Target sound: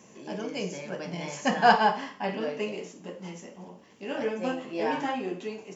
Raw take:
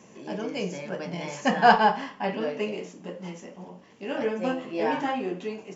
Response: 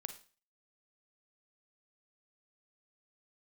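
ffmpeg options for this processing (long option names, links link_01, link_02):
-filter_complex "[0:a]asplit=2[link_01][link_02];[1:a]atrim=start_sample=2205,highshelf=frequency=4500:gain=10.5[link_03];[link_02][link_03]afir=irnorm=-1:irlink=0,volume=2.5dB[link_04];[link_01][link_04]amix=inputs=2:normalize=0,volume=-8dB"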